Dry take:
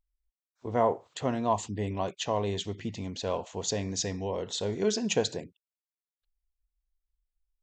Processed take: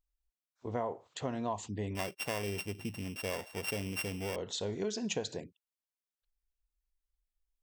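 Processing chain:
0:01.95–0:04.36: samples sorted by size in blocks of 16 samples
downward compressor 5 to 1, threshold −28 dBFS, peak gain reduction 8.5 dB
level −3.5 dB

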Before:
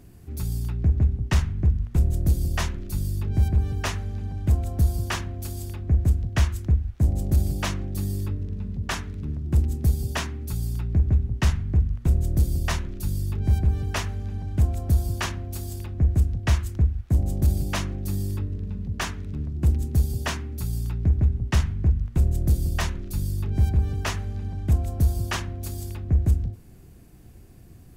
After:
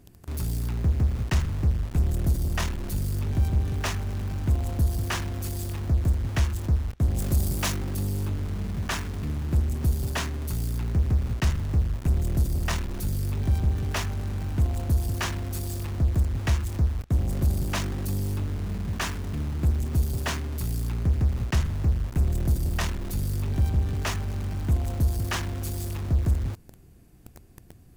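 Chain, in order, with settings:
in parallel at −5 dB: log-companded quantiser 2 bits
0:07.14–0:07.75: on the sum: high-shelf EQ 3,500 Hz → 6,300 Hz +9 dB
level −4.5 dB

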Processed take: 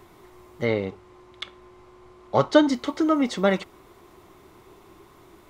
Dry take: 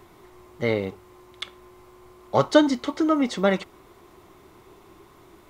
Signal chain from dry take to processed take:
0:00.65–0:02.69: high-frequency loss of the air 60 metres

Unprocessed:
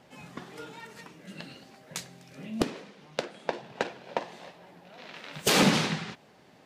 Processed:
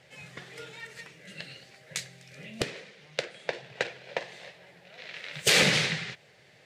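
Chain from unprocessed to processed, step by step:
octave-band graphic EQ 125/250/500/1,000/2,000/4,000/8,000 Hz +9/−11/+7/−7/+11/+5/+6 dB
level −4.5 dB

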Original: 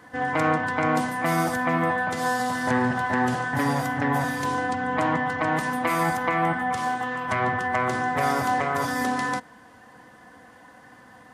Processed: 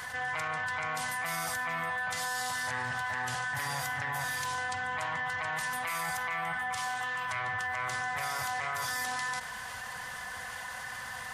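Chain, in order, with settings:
guitar amp tone stack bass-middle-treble 10-0-10
brickwall limiter −26 dBFS, peak gain reduction 7 dB
envelope flattener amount 70%

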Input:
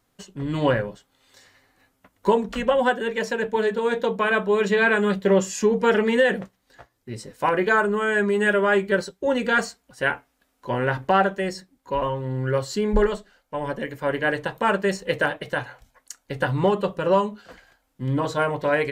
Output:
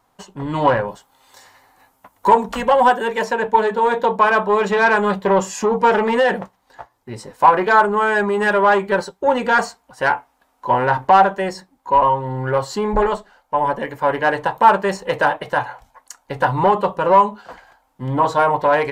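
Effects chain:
0:00.88–0:03.24: high-shelf EQ 7,100 Hz +11 dB
soft clipping −15.5 dBFS, distortion −15 dB
parametric band 900 Hz +15 dB 0.96 octaves
level +1.5 dB

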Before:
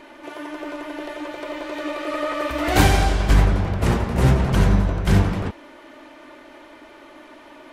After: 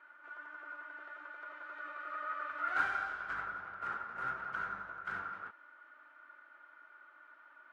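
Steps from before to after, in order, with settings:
resonant band-pass 1,400 Hz, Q 16
level +2.5 dB

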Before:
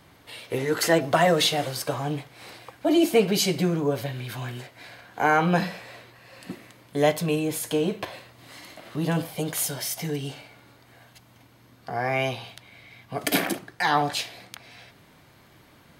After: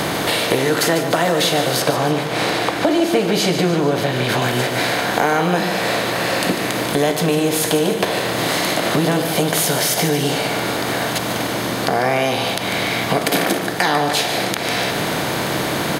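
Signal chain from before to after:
compressor on every frequency bin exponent 0.6
0:01.80–0:04.42: high-shelf EQ 8,200 Hz −10 dB
downward compressor 5 to 1, threshold −33 dBFS, peak gain reduction 18.5 dB
repeating echo 147 ms, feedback 54%, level −10 dB
boost into a limiter +17.5 dB
level −1 dB

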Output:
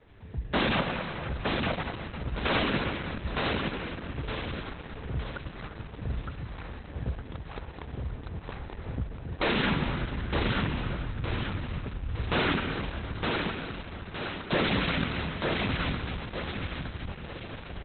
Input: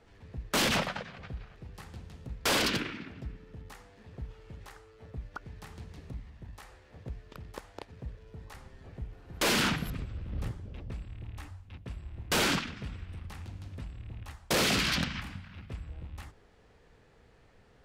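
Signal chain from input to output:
camcorder AGC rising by 7.6 dB per second
0:12.45–0:14.51: high-pass filter 150 Hz → 530 Hz 12 dB per octave
dynamic equaliser 3,600 Hz, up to −4 dB, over −40 dBFS, Q 0.88
repeating echo 913 ms, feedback 48%, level −3 dB
dense smooth reverb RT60 3.6 s, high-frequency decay 0.7×, pre-delay 115 ms, DRR 6 dB
level +3.5 dB
Opus 8 kbit/s 48,000 Hz

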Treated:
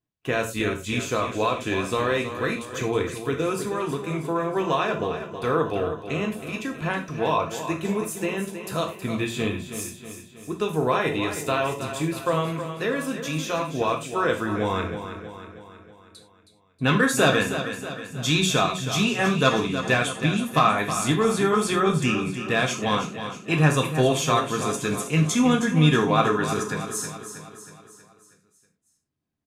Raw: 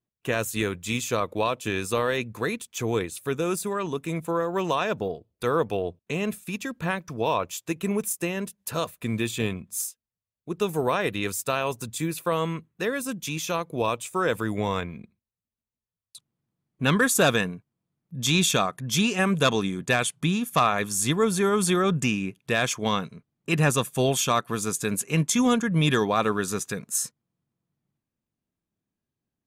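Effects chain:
high-shelf EQ 7,800 Hz −12 dB
on a send: repeating echo 319 ms, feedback 53%, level −10 dB
on the sum: reverb whose tail is shaped and stops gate 130 ms falling, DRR 2 dB

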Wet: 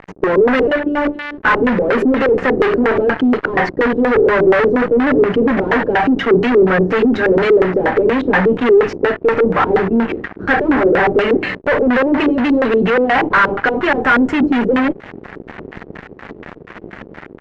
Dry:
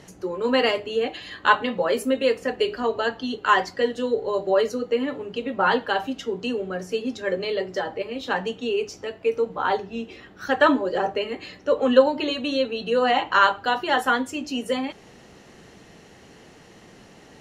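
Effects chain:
one scale factor per block 5 bits
parametric band 220 Hz +3.5 dB 1.2 octaves
automatic gain control gain up to 3.5 dB
asymmetric clip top −26 dBFS
0:00.67–0:01.38: phases set to zero 293 Hz
fuzz pedal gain 33 dB, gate −41 dBFS
auto-filter low-pass square 4.2 Hz 400–1,800 Hz

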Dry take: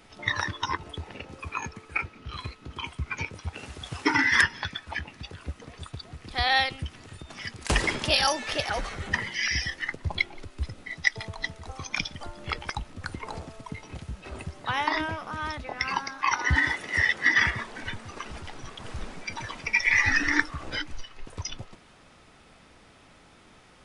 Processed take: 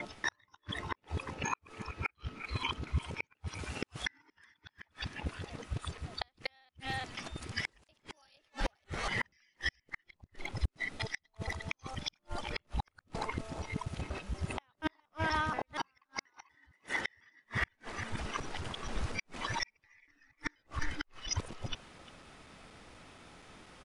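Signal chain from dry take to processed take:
reversed piece by piece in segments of 239 ms
far-end echo of a speakerphone 350 ms, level −15 dB
gate with flip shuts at −20 dBFS, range −42 dB

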